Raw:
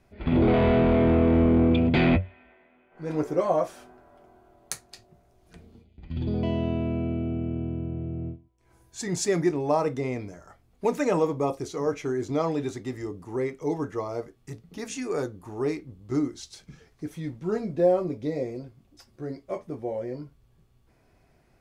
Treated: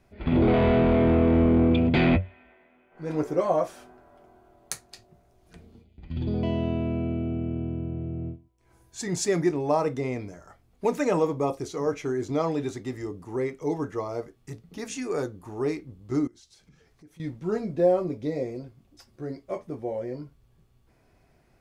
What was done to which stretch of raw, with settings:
0:16.27–0:17.20: downward compressor 2.5 to 1, threshold −58 dBFS

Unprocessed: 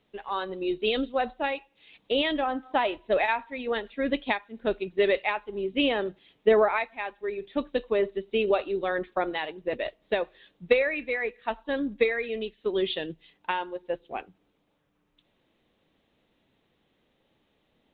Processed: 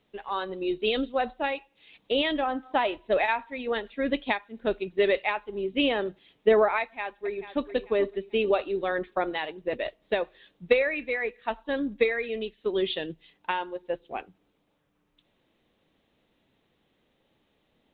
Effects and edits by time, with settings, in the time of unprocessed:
0:06.81–0:07.65: delay throw 440 ms, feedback 35%, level −12 dB

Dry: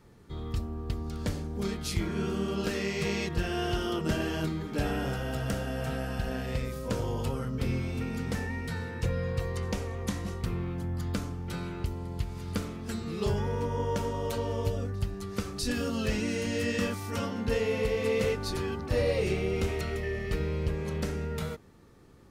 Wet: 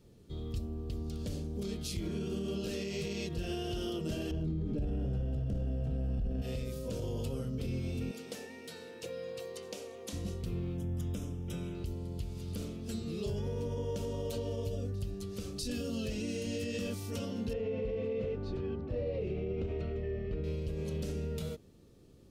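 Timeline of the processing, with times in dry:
0:04.31–0:06.42: spectral tilt −4 dB per octave
0:08.11–0:10.13: high-pass filter 420 Hz
0:10.77–0:11.75: Butterworth band-reject 4,400 Hz, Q 3.1
0:17.53–0:20.44: low-pass filter 1,800 Hz
whole clip: flat-topped bell 1,300 Hz −11 dB; brickwall limiter −25.5 dBFS; level −2.5 dB

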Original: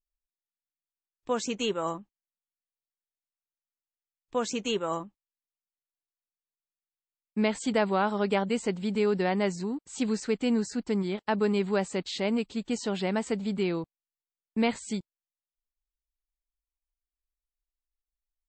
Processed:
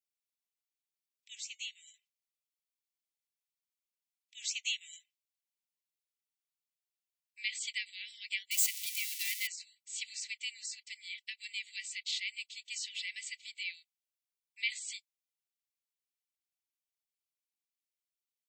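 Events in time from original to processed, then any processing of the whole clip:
0:01.35–0:01.94: tuned comb filter 730 Hz, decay 0.22 s
0:08.51–0:09.47: spike at every zero crossing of −22.5 dBFS
whole clip: Butterworth high-pass 2,000 Hz 96 dB per octave; comb filter 3 ms, depth 41%

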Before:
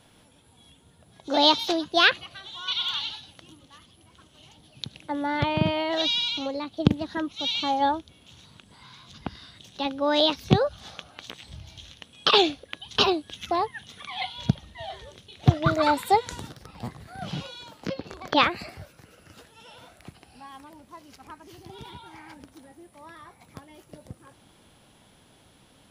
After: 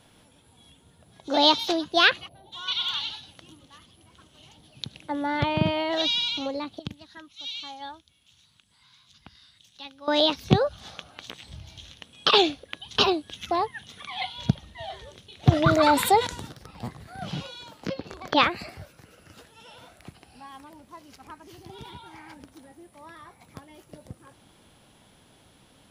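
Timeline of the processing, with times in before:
0:02.28–0:02.52: gain on a spectral selection 1,000–9,900 Hz −22 dB
0:06.79–0:10.08: guitar amp tone stack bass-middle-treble 5-5-5
0:15.52–0:16.27: envelope flattener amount 50%

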